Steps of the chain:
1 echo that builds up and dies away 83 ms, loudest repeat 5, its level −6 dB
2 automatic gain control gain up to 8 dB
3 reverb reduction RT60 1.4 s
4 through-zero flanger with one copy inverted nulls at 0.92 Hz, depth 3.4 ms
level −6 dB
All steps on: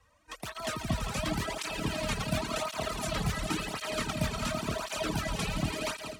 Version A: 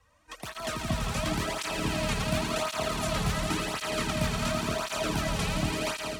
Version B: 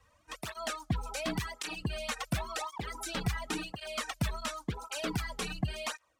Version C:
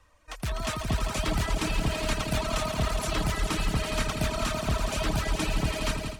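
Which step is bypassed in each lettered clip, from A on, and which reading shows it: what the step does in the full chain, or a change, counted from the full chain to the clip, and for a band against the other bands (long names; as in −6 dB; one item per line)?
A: 3, change in integrated loudness +3.0 LU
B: 1, change in momentary loudness spread +1 LU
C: 4, 125 Hz band +2.0 dB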